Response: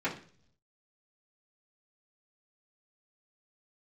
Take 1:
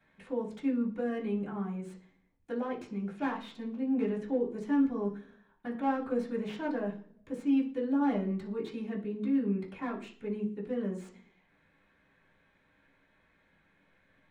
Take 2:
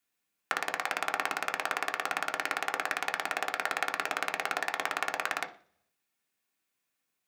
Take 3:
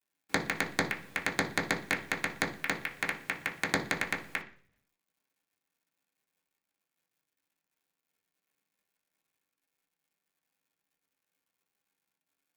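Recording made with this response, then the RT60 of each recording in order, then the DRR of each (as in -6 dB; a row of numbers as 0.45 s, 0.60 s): 1; 0.50 s, 0.50 s, 0.50 s; -10.5 dB, 3.5 dB, -3.5 dB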